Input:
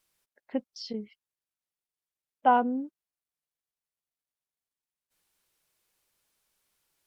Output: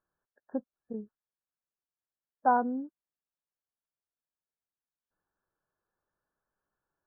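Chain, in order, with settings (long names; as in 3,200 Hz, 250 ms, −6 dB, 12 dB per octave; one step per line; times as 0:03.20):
linear-phase brick-wall low-pass 1,800 Hz
level −3 dB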